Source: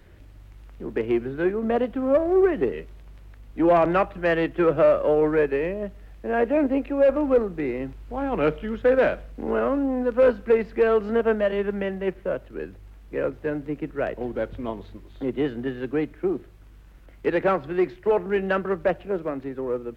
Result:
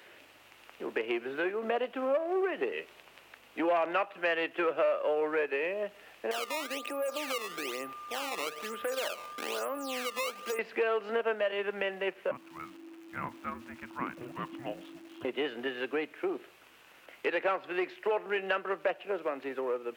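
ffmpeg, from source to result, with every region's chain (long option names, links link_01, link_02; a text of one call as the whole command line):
ffmpeg -i in.wav -filter_complex "[0:a]asettb=1/sr,asplit=3[link_01][link_02][link_03];[link_01]atrim=end=6.314[link_04];[link_02]atrim=start=6.31:end=10.59,asetpts=PTS-STARTPTS,afade=type=in:duration=0.004:curve=qsin,afade=type=out:start_time=4.276:duration=0.004:curve=qsin,acompressor=threshold=-35dB:ratio=2.5:attack=3.2:release=140:knee=1:detection=peak,acrusher=samples=16:mix=1:aa=0.000001:lfo=1:lforange=25.6:lforate=1.1,aeval=exprs='val(0)+0.00447*sin(2*PI*1200*n/s)':channel_layout=same[link_05];[link_03]atrim=start=10.586[link_06];[link_04][link_05]acrossfade=duration=0.004:curve1=hsin:curve2=qsin[link_07];[link_07][link_06]acrossfade=duration=0.004:curve1=qsin:curve2=hsin,asettb=1/sr,asplit=3[link_08][link_09][link_10];[link_08]atrim=end=12.314[link_11];[link_09]atrim=start=12.31:end=15.25,asetpts=PTS-STARTPTS,afade=type=in:duration=0.004:curve=qsin,afade=type=out:start_time=2.936:duration=0.004:curve=qsin,lowpass=frequency=1400:poles=1,aeval=exprs='val(0)*gte(abs(val(0)),0.00211)':channel_layout=same,afreqshift=-380[link_12];[link_10]atrim=start=15.246[link_13];[link_11][link_12]acrossfade=duration=0.004:curve1=hsin:curve2=qsin[link_14];[link_14][link_13]acrossfade=duration=0.004:curve1=qsin:curve2=hsin,highpass=560,equalizer=frequency=2700:width_type=o:width=0.49:gain=7,acompressor=threshold=-37dB:ratio=2.5,volume=5dB" out.wav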